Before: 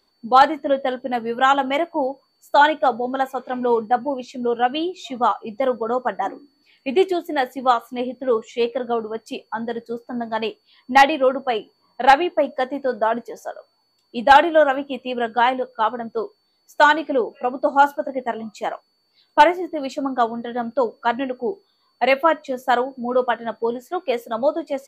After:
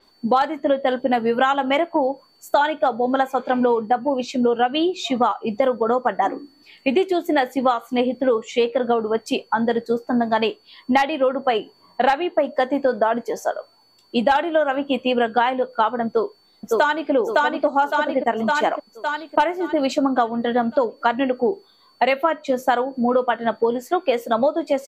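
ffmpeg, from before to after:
-filter_complex "[0:a]asplit=2[a][b];[b]afade=t=in:st=16.07:d=0.01,afade=t=out:st=17.11:d=0.01,aecho=0:1:560|1120|1680|2240|2800|3360|3920:0.794328|0.397164|0.198582|0.099291|0.0496455|0.0248228|0.0124114[c];[a][c]amix=inputs=2:normalize=0,acompressor=threshold=-24dB:ratio=10,adynamicequalizer=threshold=0.00251:dfrequency=7000:dqfactor=0.7:tfrequency=7000:tqfactor=0.7:attack=5:release=100:ratio=0.375:range=3:mode=cutabove:tftype=highshelf,volume=9dB"

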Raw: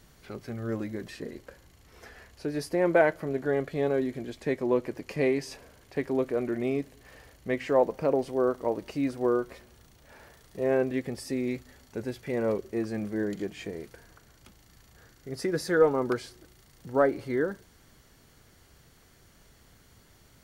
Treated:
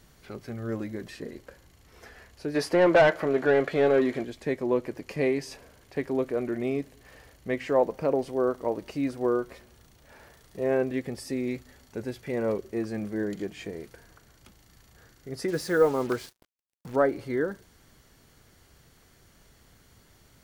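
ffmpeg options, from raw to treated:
-filter_complex "[0:a]asplit=3[a][b][c];[a]afade=t=out:st=2.54:d=0.02[d];[b]asplit=2[e][f];[f]highpass=f=720:p=1,volume=19dB,asoftclip=type=tanh:threshold=-10.5dB[g];[e][g]amix=inputs=2:normalize=0,lowpass=f=2.4k:p=1,volume=-6dB,afade=t=in:st=2.54:d=0.02,afade=t=out:st=4.23:d=0.02[h];[c]afade=t=in:st=4.23:d=0.02[i];[d][h][i]amix=inputs=3:normalize=0,asettb=1/sr,asplit=3[j][k][l];[j]atrim=end=15.484[m];[k]atrim=start=15.48:end=16.96,asetpts=PTS-STARTPTS,afade=t=in:d=0.004:c=qsin,afade=t=out:st=1.476:d=0.004:c=qsin,acrusher=bits=6:mix=0:aa=0.5[n];[l]atrim=start=16.956[o];[m][n]acrossfade=d=0.004:c1=hsin:c2=qsin[p];[p][o]acrossfade=d=0.004:c1=qsin:c2=hsin"

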